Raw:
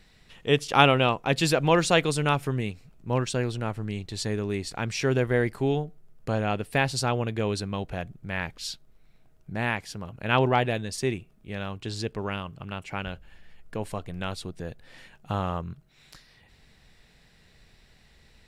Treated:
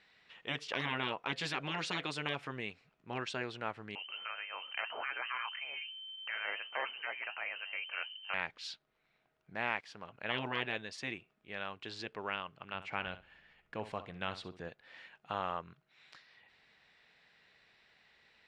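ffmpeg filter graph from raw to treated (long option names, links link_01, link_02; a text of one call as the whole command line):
ffmpeg -i in.wav -filter_complex "[0:a]asettb=1/sr,asplit=3[link_01][link_02][link_03];[link_01]atrim=end=3.954[link_04];[link_02]atrim=start=3.95:end=8.34,asetpts=PTS-STARTPTS,afade=type=in:duration=0.004:curve=qsin,afade=type=out:start_time=4.386:duration=0.004:curve=qsin,acontrast=74,flanger=delay=2.6:depth=6.2:regen=68:speed=1.3:shape=sinusoidal,lowpass=frequency=2600:width_type=q:width=0.5098,lowpass=frequency=2600:width_type=q:width=0.6013,lowpass=frequency=2600:width_type=q:width=0.9,lowpass=frequency=2600:width_type=q:width=2.563,afreqshift=-3100[link_05];[link_03]atrim=start=8.336[link_06];[link_04][link_05]acrossfade=duration=0.004:curve1=hsin:curve2=qsin[link_07];[link_07][link_06]acrossfade=duration=0.004:curve1=qsin:curve2=hsin,asettb=1/sr,asplit=3[link_08][link_09][link_10];[link_08]atrim=end=9.554[link_11];[link_09]atrim=start=9.55:end=10.04,asetpts=PTS-STARTPTS,afade=type=in:duration=0.004:curve=qsin,afade=type=out:start_time=0.486:duration=0.004:curve=qsin,deesser=0.85,aeval=exprs='sgn(val(0))*max(abs(val(0))-0.00178,0)':channel_layout=same[link_12];[link_10]atrim=start=10.036[link_13];[link_11][link_12]acrossfade=duration=0.004:curve1=hsin:curve2=qsin[link_14];[link_14][link_13]acrossfade=duration=0.004:curve1=qsin:curve2=hsin,asettb=1/sr,asplit=3[link_15][link_16][link_17];[link_15]atrim=end=12.744[link_18];[link_16]atrim=start=12.74:end=14.69,asetpts=PTS-STARTPTS,afade=type=in:duration=0.004:curve=qsin,afade=type=out:start_time=1.946:duration=0.004:curve=qsin,lowshelf=frequency=220:gain=9,asplit=2[link_19][link_20];[link_20]adelay=64,lowpass=frequency=4700:poles=1,volume=-13dB,asplit=2[link_21][link_22];[link_22]adelay=64,lowpass=frequency=4700:poles=1,volume=0.22,asplit=2[link_23][link_24];[link_24]adelay=64,lowpass=frequency=4700:poles=1,volume=0.22[link_25];[link_19][link_21][link_23][link_25]amix=inputs=4:normalize=0,atrim=end_sample=85995[link_26];[link_17]atrim=start=14.686[link_27];[link_18][link_26]acrossfade=duration=0.004:curve1=hsin:curve2=qsin[link_28];[link_28][link_27]acrossfade=duration=0.004:curve1=qsin:curve2=hsin,highpass=frequency=1300:poles=1,afftfilt=real='re*lt(hypot(re,im),0.1)':imag='im*lt(hypot(re,im),0.1)':win_size=1024:overlap=0.75,lowpass=2900" out.wav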